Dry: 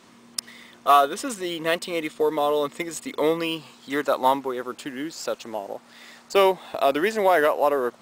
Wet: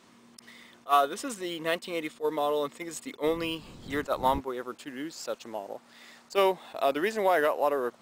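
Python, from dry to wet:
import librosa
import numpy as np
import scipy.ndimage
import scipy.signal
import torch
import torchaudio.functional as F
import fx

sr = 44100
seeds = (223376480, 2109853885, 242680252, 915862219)

y = fx.dmg_wind(x, sr, seeds[0], corner_hz=230.0, level_db=-30.0, at=(3.25, 4.39), fade=0.02)
y = fx.attack_slew(y, sr, db_per_s=420.0)
y = F.gain(torch.from_numpy(y), -5.5).numpy()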